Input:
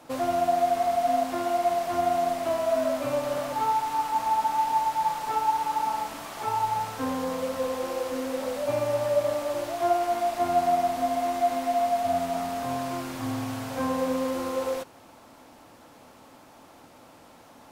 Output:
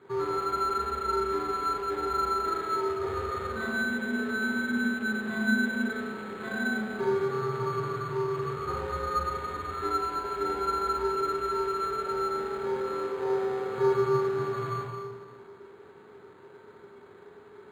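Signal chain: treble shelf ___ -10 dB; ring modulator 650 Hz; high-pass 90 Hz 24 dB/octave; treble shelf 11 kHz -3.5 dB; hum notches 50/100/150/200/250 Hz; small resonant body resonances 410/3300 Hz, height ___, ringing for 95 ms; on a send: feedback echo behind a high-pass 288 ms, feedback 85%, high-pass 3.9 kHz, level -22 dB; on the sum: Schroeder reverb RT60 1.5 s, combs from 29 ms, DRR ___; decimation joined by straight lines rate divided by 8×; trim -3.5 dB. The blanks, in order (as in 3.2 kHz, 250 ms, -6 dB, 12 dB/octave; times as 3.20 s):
3.6 kHz, 17 dB, -2.5 dB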